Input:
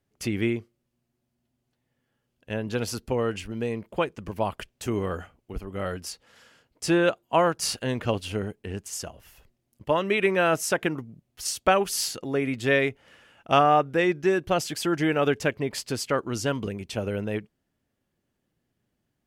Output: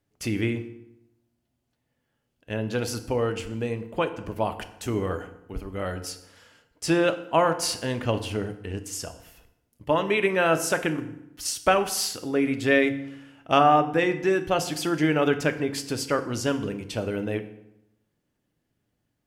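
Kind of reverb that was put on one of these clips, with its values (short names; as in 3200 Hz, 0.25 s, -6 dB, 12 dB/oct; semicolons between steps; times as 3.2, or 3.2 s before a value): FDN reverb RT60 0.84 s, low-frequency decay 1.2×, high-frequency decay 0.75×, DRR 8 dB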